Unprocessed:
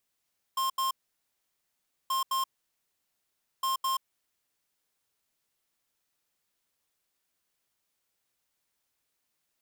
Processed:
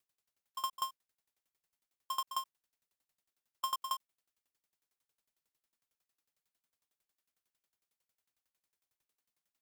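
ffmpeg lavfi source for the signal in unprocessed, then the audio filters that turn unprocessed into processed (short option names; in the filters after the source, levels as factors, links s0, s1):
-f lavfi -i "aevalsrc='0.0376*(2*lt(mod(1060*t,1),0.5)-1)*clip(min(mod(mod(t,1.53),0.21),0.13-mod(mod(t,1.53),0.21))/0.005,0,1)*lt(mod(t,1.53),0.42)':d=4.59:s=44100"
-af "aeval=exprs='val(0)*pow(10,-24*if(lt(mod(11*n/s,1),2*abs(11)/1000),1-mod(11*n/s,1)/(2*abs(11)/1000),(mod(11*n/s,1)-2*abs(11)/1000)/(1-2*abs(11)/1000))/20)':c=same"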